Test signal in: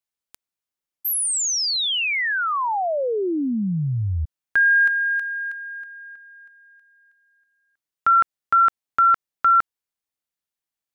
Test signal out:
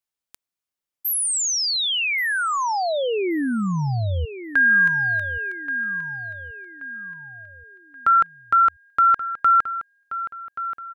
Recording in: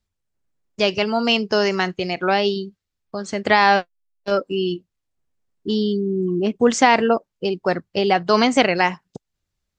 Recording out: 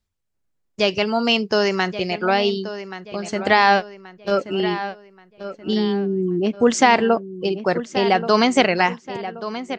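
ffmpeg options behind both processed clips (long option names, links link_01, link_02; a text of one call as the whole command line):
ffmpeg -i in.wav -filter_complex "[0:a]asplit=2[link_01][link_02];[link_02]adelay=1129,lowpass=frequency=4100:poles=1,volume=-12dB,asplit=2[link_03][link_04];[link_04]adelay=1129,lowpass=frequency=4100:poles=1,volume=0.41,asplit=2[link_05][link_06];[link_06]adelay=1129,lowpass=frequency=4100:poles=1,volume=0.41,asplit=2[link_07][link_08];[link_08]adelay=1129,lowpass=frequency=4100:poles=1,volume=0.41[link_09];[link_01][link_03][link_05][link_07][link_09]amix=inputs=5:normalize=0" out.wav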